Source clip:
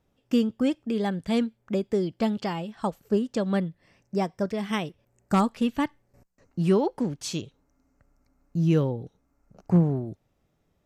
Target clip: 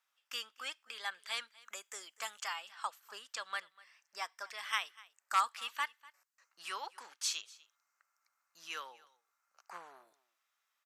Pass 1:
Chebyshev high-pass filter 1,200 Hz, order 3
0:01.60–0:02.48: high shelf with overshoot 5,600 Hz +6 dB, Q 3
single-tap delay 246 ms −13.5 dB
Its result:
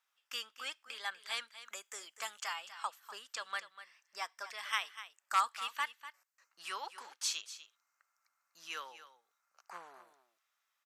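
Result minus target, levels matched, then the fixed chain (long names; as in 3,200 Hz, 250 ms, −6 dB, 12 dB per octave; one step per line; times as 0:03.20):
echo-to-direct +8.5 dB
Chebyshev high-pass filter 1,200 Hz, order 3
0:01.60–0:02.48: high shelf with overshoot 5,600 Hz +6 dB, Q 3
single-tap delay 246 ms −22 dB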